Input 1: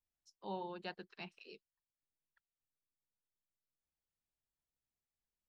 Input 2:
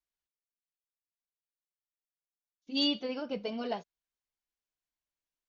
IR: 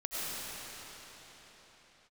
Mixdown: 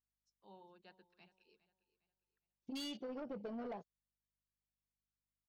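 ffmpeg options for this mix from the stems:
-filter_complex "[0:a]aeval=exprs='val(0)+0.0001*(sin(2*PI*50*n/s)+sin(2*PI*2*50*n/s)/2+sin(2*PI*3*50*n/s)/3+sin(2*PI*4*50*n/s)/4+sin(2*PI*5*50*n/s)/5)':channel_layout=same,volume=-17dB,asplit=2[link_01][link_02];[link_02]volume=-17dB[link_03];[1:a]afwtdn=0.00708,acompressor=threshold=-32dB:ratio=6,volume=3dB[link_04];[link_03]aecho=0:1:407|814|1221|1628|2035:1|0.35|0.122|0.0429|0.015[link_05];[link_01][link_04][link_05]amix=inputs=3:normalize=0,asoftclip=type=tanh:threshold=-32dB,acompressor=threshold=-45dB:ratio=3"

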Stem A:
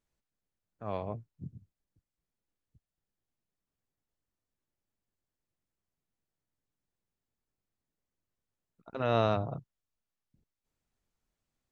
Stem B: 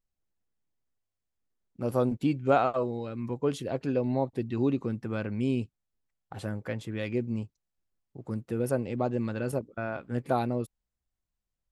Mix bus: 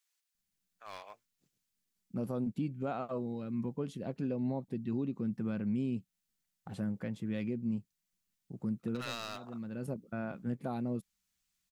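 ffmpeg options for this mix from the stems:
ffmpeg -i stem1.wav -i stem2.wav -filter_complex "[0:a]highpass=1300,aeval=exprs='clip(val(0),-1,0.00631)':channel_layout=same,highshelf=frequency=2100:gain=11,volume=-1dB,asplit=2[link_01][link_02];[1:a]equalizer=frequency=190:width=1.8:gain=14.5,adelay=350,volume=-8dB[link_03];[link_02]apad=whole_len=531875[link_04];[link_03][link_04]sidechaincompress=threshold=-44dB:ratio=8:attack=8.1:release=643[link_05];[link_01][link_05]amix=inputs=2:normalize=0,alimiter=level_in=2dB:limit=-24dB:level=0:latency=1:release=393,volume=-2dB" out.wav

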